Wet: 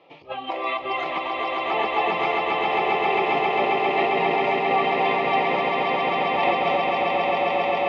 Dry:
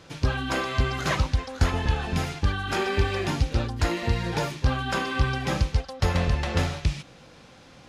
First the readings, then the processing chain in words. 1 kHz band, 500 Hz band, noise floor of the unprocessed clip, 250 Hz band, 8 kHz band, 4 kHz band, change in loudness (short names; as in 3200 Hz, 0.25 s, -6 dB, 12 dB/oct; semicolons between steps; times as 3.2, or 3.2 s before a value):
+11.5 dB, +9.0 dB, -50 dBFS, -0.5 dB, under -20 dB, +2.5 dB, +4.5 dB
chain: spectral noise reduction 14 dB; negative-ratio compressor -34 dBFS, ratio -1; Butterworth band-stop 1500 Hz, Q 3.4; speaker cabinet 450–2700 Hz, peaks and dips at 760 Hz +4 dB, 1100 Hz -5 dB, 1800 Hz -9 dB; swelling echo 0.134 s, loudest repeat 8, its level -4.5 dB; gain +8 dB